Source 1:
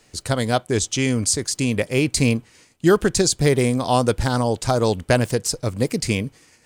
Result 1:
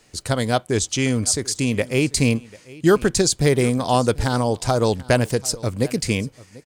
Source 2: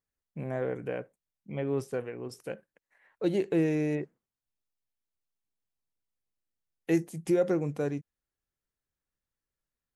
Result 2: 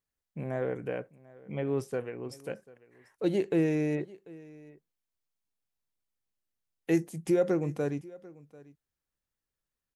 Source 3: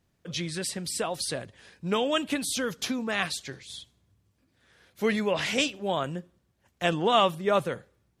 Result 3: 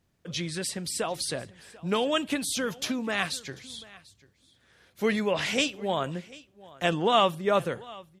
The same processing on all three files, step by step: delay 742 ms -21.5 dB

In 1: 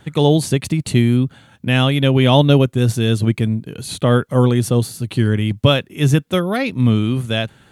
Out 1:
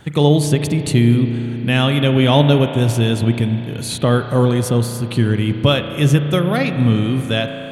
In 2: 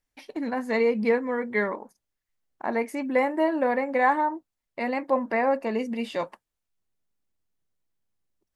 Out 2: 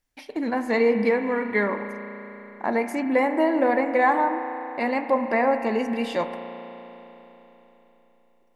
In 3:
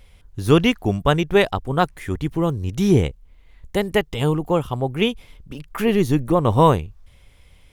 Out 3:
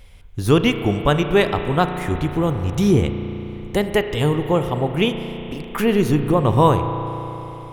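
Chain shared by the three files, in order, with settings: in parallel at -0.5 dB: compression, threshold -22 dBFS; on the sum: spring tank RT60 3.8 s, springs 34 ms, chirp 45 ms, DRR 7 dB; trim -2.5 dB

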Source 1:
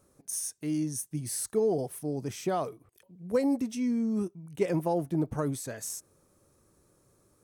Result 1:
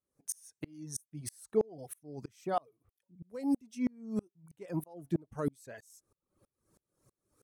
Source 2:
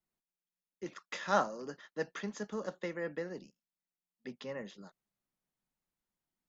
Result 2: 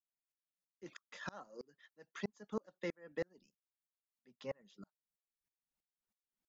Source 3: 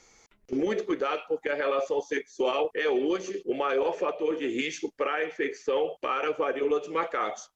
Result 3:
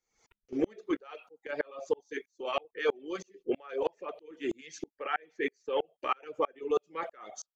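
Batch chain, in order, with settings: reverb removal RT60 0.84 s; sawtooth tremolo in dB swelling 3.1 Hz, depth 35 dB; trim +3 dB

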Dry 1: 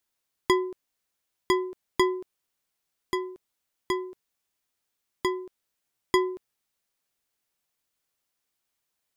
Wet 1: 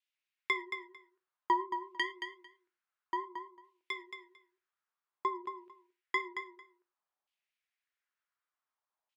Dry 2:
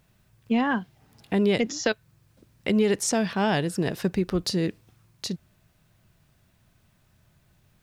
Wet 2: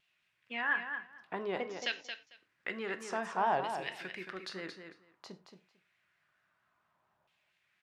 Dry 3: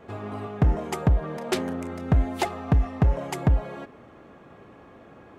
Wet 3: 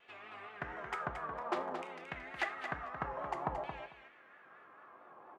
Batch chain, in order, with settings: LFO band-pass saw down 0.55 Hz 830–2800 Hz; vibrato 4.4 Hz 85 cents; on a send: feedback delay 224 ms, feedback 15%, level -8 dB; on the sum: gated-style reverb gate 130 ms falling, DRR 9.5 dB

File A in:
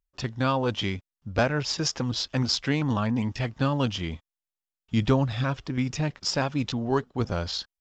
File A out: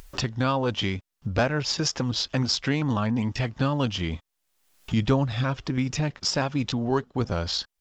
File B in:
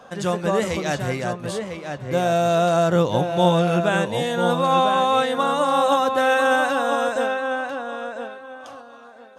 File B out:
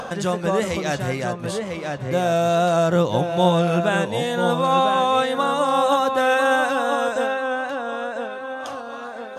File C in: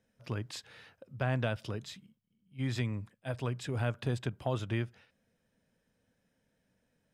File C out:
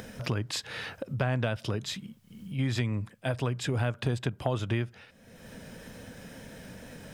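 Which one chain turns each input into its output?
wow and flutter 23 cents; upward compressor, threshold -21 dBFS

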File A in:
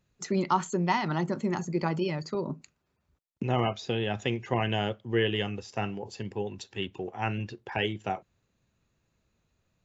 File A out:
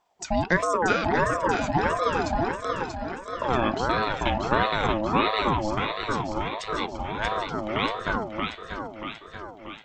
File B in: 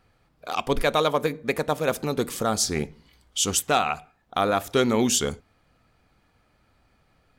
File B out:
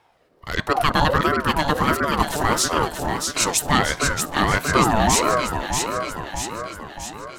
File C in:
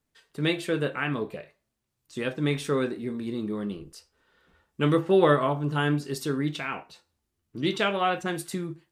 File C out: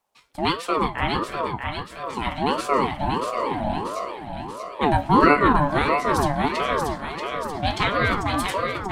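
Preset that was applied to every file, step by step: echo whose repeats swap between lows and highs 317 ms, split 950 Hz, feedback 75%, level -2 dB; ring modulator with a swept carrier 650 Hz, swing 35%, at 1.5 Hz; trim +5.5 dB

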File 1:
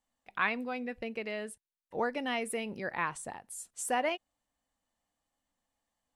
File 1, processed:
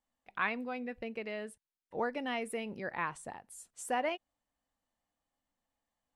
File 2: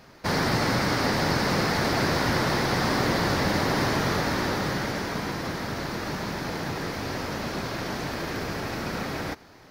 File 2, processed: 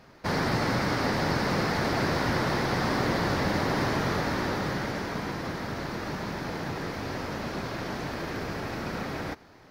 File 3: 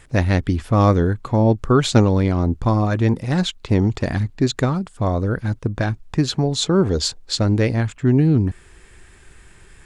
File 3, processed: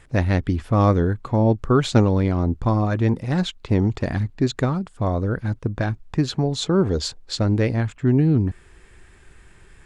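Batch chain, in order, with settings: treble shelf 4 kHz -6 dB; trim -2 dB

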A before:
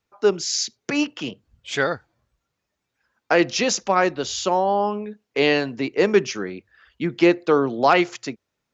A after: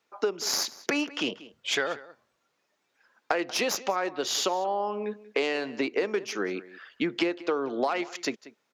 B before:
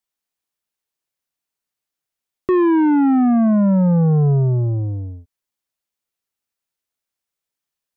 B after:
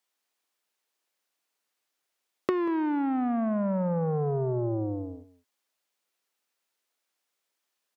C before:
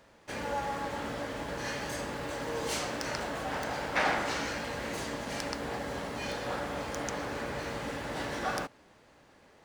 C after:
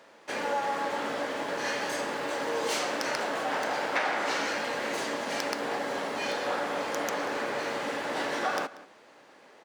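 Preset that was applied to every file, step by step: tracing distortion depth 0.042 ms; high-pass 310 Hz 12 dB/octave; treble shelf 7.8 kHz -6 dB; compression 16:1, threshold -30 dBFS; echo from a far wall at 32 m, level -18 dB; trim +6 dB

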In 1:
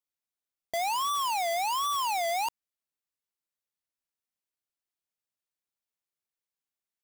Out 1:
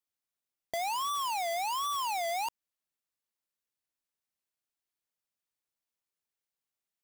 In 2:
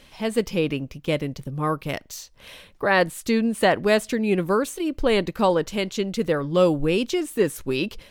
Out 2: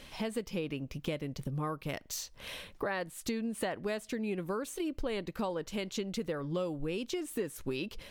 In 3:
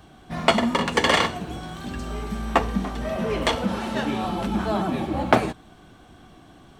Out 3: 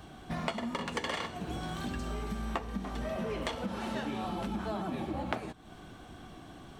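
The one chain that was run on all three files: compression 6:1, threshold -33 dBFS

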